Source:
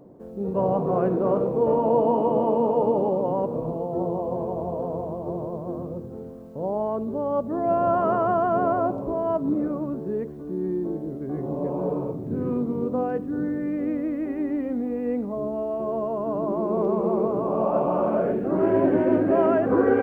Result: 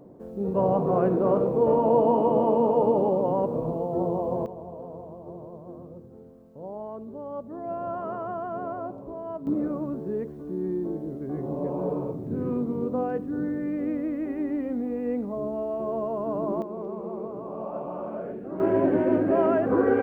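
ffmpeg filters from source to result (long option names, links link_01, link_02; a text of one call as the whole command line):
ffmpeg -i in.wav -af "asetnsamples=nb_out_samples=441:pad=0,asendcmd='4.46 volume volume -10.5dB;9.47 volume volume -2dB;16.62 volume volume -11dB;18.6 volume volume -2dB',volume=0dB" out.wav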